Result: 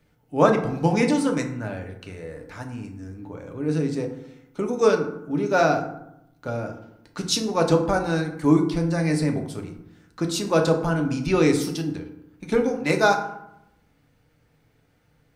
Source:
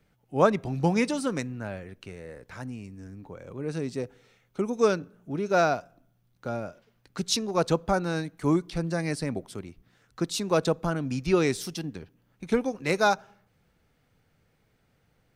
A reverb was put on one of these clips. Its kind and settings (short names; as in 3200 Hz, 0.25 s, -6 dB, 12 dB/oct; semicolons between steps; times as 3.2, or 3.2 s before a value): FDN reverb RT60 0.81 s, low-frequency decay 1.3×, high-frequency decay 0.5×, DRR 2.5 dB; gain +2 dB